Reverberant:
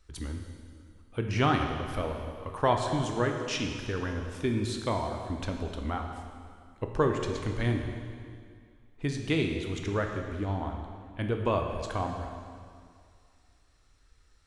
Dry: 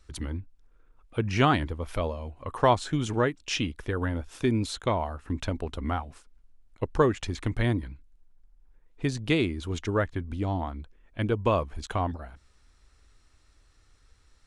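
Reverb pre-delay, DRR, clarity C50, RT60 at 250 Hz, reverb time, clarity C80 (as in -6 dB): 8 ms, 3.0 dB, 4.5 dB, 2.2 s, 2.2 s, 5.5 dB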